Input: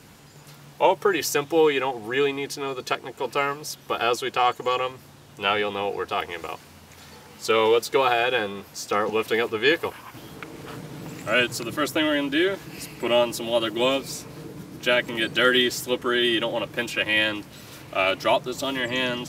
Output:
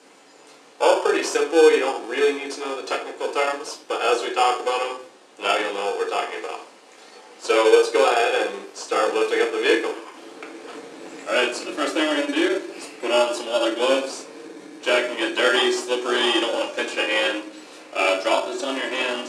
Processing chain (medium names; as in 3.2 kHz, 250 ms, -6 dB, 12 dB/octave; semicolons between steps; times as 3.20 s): 15.86–16.86 s: peaking EQ 6.1 kHz +11 dB 1 oct; simulated room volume 410 m³, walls furnished, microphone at 2.1 m; in parallel at -4 dB: sample-rate reducer 2 kHz, jitter 0%; on the sum: elliptic band-pass 350–9000 Hz, stop band 60 dB; trim -2.5 dB